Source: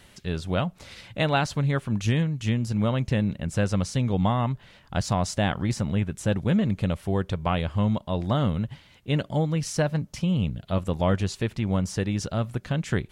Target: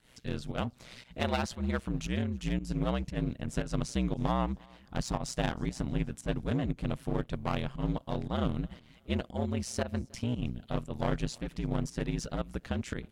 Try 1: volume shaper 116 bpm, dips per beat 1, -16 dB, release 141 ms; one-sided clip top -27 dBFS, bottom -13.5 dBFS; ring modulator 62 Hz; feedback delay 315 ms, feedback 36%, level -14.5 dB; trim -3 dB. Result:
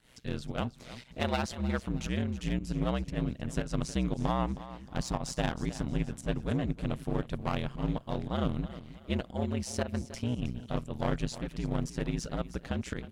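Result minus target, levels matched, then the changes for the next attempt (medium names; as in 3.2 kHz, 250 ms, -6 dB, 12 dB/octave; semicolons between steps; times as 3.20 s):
echo-to-direct +12 dB
change: feedback delay 315 ms, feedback 36%, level -26.5 dB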